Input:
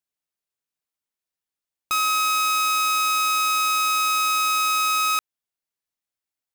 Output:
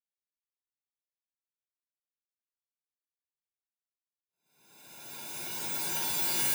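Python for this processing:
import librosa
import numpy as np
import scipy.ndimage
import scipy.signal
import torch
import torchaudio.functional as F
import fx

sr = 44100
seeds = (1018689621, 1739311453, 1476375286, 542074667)

y = fx.spec_gate(x, sr, threshold_db=-25, keep='weak')
y = fx.leveller(y, sr, passes=1)
y = np.clip(y, -10.0 ** (-20.0 / 20.0), 10.0 ** (-20.0 / 20.0))
y = fx.paulstretch(y, sr, seeds[0], factor=8.0, window_s=0.5, from_s=1.11)
y = fx.low_shelf_res(y, sr, hz=100.0, db=-13.5, q=3.0)
y = y * librosa.db_to_amplitude(8.5)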